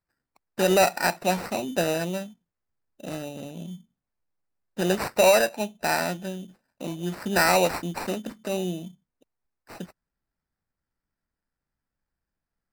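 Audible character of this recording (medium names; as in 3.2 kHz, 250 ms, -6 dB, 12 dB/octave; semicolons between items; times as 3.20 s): aliases and images of a low sample rate 3.3 kHz, jitter 0%; MP3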